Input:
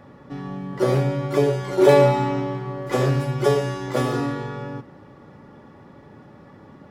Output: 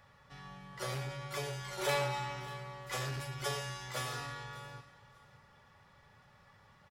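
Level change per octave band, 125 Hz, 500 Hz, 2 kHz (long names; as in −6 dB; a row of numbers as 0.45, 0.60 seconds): −18.0, −22.0, −8.5 decibels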